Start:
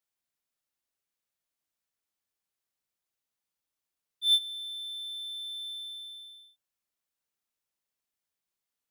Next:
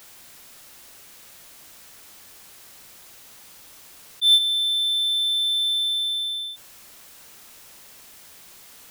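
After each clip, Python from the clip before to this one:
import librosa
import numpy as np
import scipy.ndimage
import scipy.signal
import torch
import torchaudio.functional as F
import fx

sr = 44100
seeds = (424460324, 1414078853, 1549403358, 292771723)

y = fx.env_flatten(x, sr, amount_pct=50)
y = F.gain(torch.from_numpy(y), 7.0).numpy()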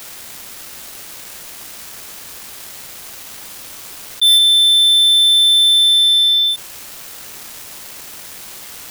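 y = fx.leveller(x, sr, passes=5)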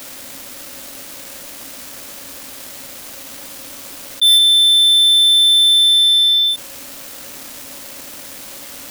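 y = fx.small_body(x, sr, hz=(270.0, 550.0), ring_ms=70, db=12)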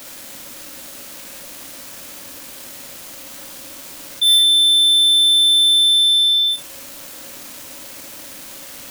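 y = fx.rev_gated(x, sr, seeds[0], gate_ms=80, shape='rising', drr_db=4.5)
y = F.gain(torch.from_numpy(y), -3.5).numpy()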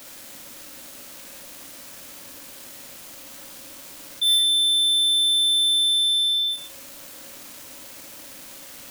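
y = x + 10.0 ** (-14.5 / 20.0) * np.pad(x, (int(121 * sr / 1000.0), 0))[:len(x)]
y = F.gain(torch.from_numpy(y), -6.0).numpy()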